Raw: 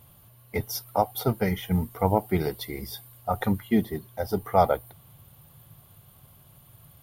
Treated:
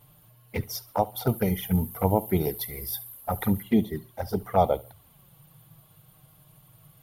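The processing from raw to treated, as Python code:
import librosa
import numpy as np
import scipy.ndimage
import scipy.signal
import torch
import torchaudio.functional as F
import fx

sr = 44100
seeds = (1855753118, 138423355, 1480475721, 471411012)

y = fx.peak_eq(x, sr, hz=12000.0, db=15.0, octaves=0.49, at=(1.27, 3.63))
y = fx.env_flanger(y, sr, rest_ms=7.2, full_db=-21.0)
y = fx.echo_feedback(y, sr, ms=70, feedback_pct=33, wet_db=-21.5)
y = y * 10.0 ** (1.0 / 20.0)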